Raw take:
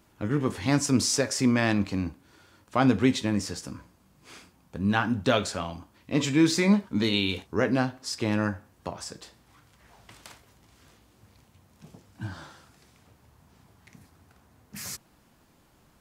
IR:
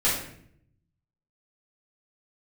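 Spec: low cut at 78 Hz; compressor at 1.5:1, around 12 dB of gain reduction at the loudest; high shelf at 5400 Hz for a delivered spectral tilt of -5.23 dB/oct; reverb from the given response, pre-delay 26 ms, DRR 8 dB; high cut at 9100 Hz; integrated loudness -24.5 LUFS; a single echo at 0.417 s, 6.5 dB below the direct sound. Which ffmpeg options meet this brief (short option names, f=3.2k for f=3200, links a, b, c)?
-filter_complex "[0:a]highpass=78,lowpass=9.1k,highshelf=f=5.4k:g=-8,acompressor=threshold=-51dB:ratio=1.5,aecho=1:1:417:0.473,asplit=2[a][b];[1:a]atrim=start_sample=2205,adelay=26[c];[b][c]afir=irnorm=-1:irlink=0,volume=-21dB[d];[a][d]amix=inputs=2:normalize=0,volume=12.5dB"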